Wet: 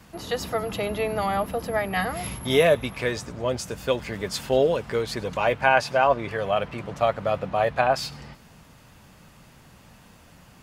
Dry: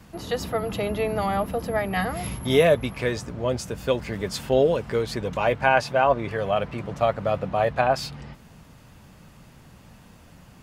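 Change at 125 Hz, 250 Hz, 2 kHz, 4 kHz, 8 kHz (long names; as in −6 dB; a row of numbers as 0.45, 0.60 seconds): −3.0, −2.5, +1.0, +1.5, +1.5 decibels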